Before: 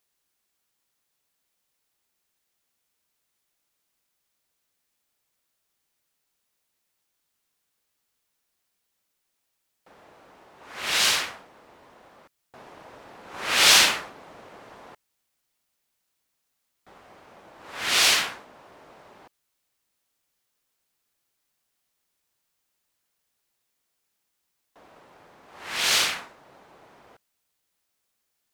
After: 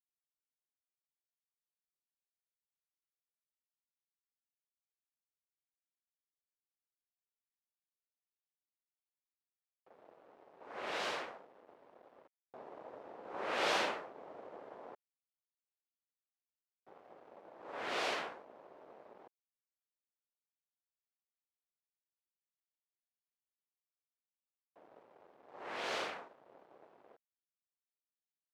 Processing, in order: in parallel at +2 dB: compression, threshold -35 dBFS, peak gain reduction 21 dB; on the sum: crossover distortion -47 dBFS; band-pass filter 510 Hz, Q 1.2; trim -4.5 dB

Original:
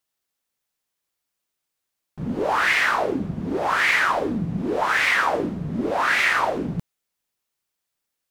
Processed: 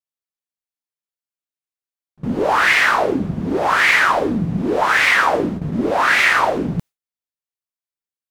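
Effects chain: gate with hold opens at -20 dBFS; trim +5.5 dB

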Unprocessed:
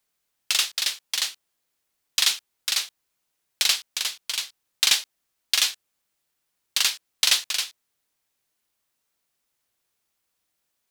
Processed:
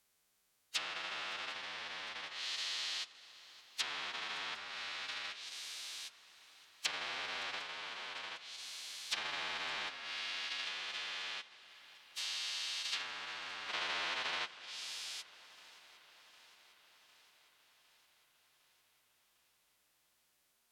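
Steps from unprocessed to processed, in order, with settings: spectrogram pixelated in time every 400 ms; time stretch by phase-locked vocoder 1.9×; low-pass that closes with the level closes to 1.4 kHz, closed at -31.5 dBFS; on a send: shuffle delay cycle 756 ms, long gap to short 3:1, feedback 64%, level -21 dB; on the sum: trim +4 dB

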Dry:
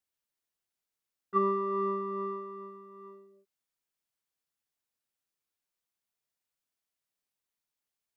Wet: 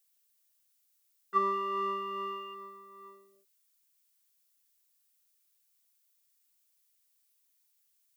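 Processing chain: tilt EQ +4.5 dB/octave; 1.52–2.53 s: whistle 2.8 kHz -50 dBFS

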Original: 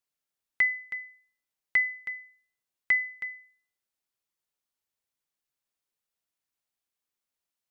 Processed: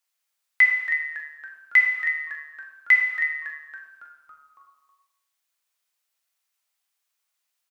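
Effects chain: high-pass 870 Hz 12 dB/octave; on a send: frequency-shifting echo 278 ms, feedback 58%, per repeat -150 Hz, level -15.5 dB; on the sum: gated-style reverb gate 340 ms falling, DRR 0 dB; trim +6.5 dB

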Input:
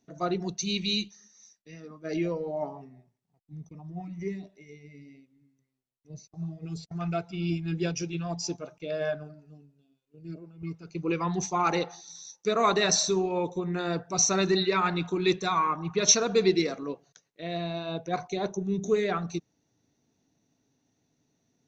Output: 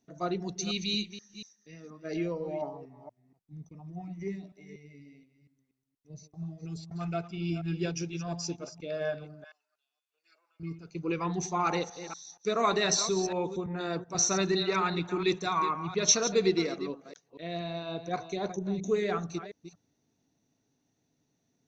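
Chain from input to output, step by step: chunks repeated in reverse 238 ms, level -11.5 dB; 9.44–10.60 s: high-pass 980 Hz 24 dB/octave; 13.66–14.15 s: three bands expanded up and down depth 100%; trim -3 dB

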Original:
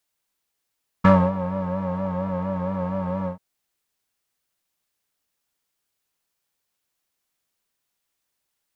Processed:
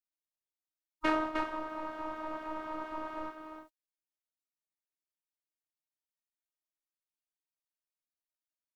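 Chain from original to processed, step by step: delay 307 ms -6 dB; spectral gate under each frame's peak -15 dB weak; robot voice 313 Hz

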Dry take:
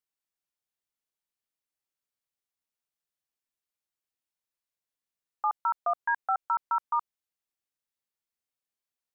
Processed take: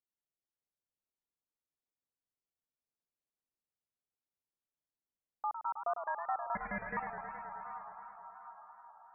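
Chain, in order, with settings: Bessel low-pass 650 Hz, order 2; on a send: echo that smears into a reverb 720 ms, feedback 48%, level -8.5 dB; 6.55–6.97 s: on the sum: ring modulator 740 Hz; modulated delay 106 ms, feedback 77%, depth 170 cents, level -8.5 dB; trim -2 dB

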